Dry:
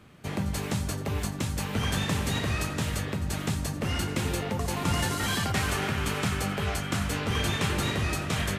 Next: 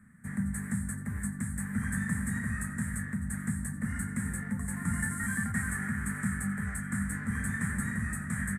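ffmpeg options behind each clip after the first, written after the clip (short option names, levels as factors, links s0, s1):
-af "firequalizer=gain_entry='entry(140,0);entry(220,10);entry(320,-16);entry(670,-17);entry(1800,9);entry(2700,-27);entry(5300,-24);entry(8300,9);entry(13000,-4)':delay=0.05:min_phase=1,volume=0.501"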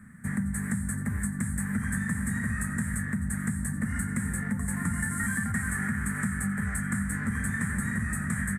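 -af "acompressor=threshold=0.02:ratio=6,volume=2.51"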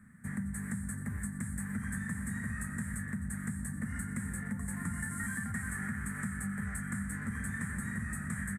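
-af "aecho=1:1:121:0.133,volume=0.422"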